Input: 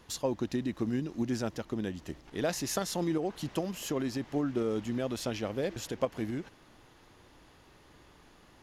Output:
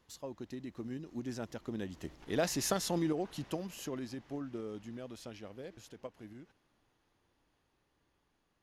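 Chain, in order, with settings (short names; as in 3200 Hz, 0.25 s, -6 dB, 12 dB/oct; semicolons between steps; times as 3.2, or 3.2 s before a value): Doppler pass-by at 2.62, 9 m/s, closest 5.3 m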